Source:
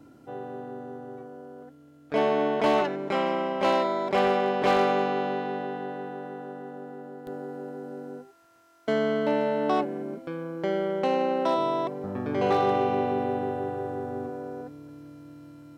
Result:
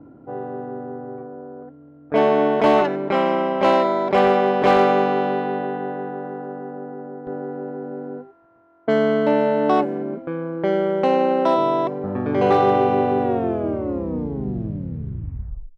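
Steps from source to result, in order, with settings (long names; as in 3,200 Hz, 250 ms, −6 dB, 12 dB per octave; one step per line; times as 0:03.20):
turntable brake at the end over 2.56 s
high-shelf EQ 3,000 Hz −8 dB
low-pass that shuts in the quiet parts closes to 990 Hz, open at −21.5 dBFS
level +7.5 dB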